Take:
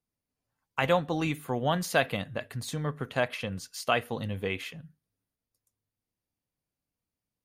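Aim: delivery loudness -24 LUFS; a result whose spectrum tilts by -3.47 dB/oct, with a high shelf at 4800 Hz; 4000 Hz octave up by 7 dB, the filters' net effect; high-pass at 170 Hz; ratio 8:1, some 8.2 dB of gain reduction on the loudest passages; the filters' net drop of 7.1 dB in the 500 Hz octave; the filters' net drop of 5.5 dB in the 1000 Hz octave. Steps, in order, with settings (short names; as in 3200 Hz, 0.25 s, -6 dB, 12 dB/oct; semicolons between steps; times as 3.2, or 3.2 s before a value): HPF 170 Hz; bell 500 Hz -7 dB; bell 1000 Hz -5.5 dB; bell 4000 Hz +6 dB; high shelf 4800 Hz +8.5 dB; compressor 8:1, threshold -29 dBFS; gain +10.5 dB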